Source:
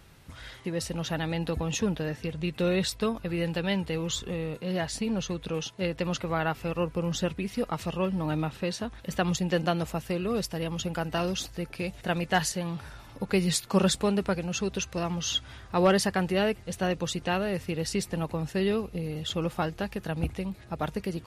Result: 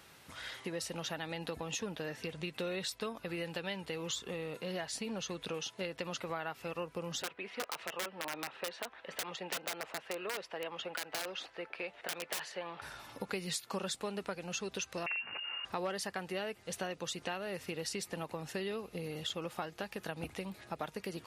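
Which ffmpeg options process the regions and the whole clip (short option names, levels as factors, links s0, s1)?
-filter_complex "[0:a]asettb=1/sr,asplit=3[s0][s1][s2];[s0]atrim=end=7.224[s3];[s1]atrim=start=7.22:end=12.82,asetpts=PTS-STARTPTS,afade=t=in:d=0.004:c=qsin,afade=t=out:st=5.596:d=0.004:c=qsin,lowpass=f=11000:w=0.5412,lowpass=f=11000:w=1.3066,acrossover=split=370 3200:gain=0.126 1 0.0708[s4][s5][s6];[s4][s5][s6]amix=inputs=3:normalize=0,aeval=exprs='(mod(18.8*val(0)+1,2)-1)/18.8':c=same[s7];[s2]atrim=start=12.816[s8];[s3][s7]acrossfade=d=0.004:c1=hsin:c2=qsin[s9];[s9][s8]acrossfade=d=0.004:c1=qsin:c2=hsin,asettb=1/sr,asplit=3[s10][s11][s12];[s10]atrim=end=15.064[s13];[s11]atrim=start=15.06:end=15.65,asetpts=PTS-STARTPTS,afade=t=in:d=0.004:c=qsin,afade=t=out:st=0.586:d=0.004:c=qsin,lowshelf=f=230:g=6,aeval=exprs='(mod(11.9*val(0)+1,2)-1)/11.9':c=same,lowpass=f=2500:t=q:w=0.5098,lowpass=f=2500:t=q:w=0.6013,lowpass=f=2500:t=q:w=0.9,lowpass=f=2500:t=q:w=2.563,afreqshift=-2900[s14];[s12]atrim=start=15.646[s15];[s13][s14]acrossfade=d=0.004:c1=hsin:c2=qsin[s16];[s16][s15]acrossfade=d=0.004:c1=qsin:c2=hsin,highpass=f=500:p=1,acompressor=threshold=0.0126:ratio=4,volume=1.19"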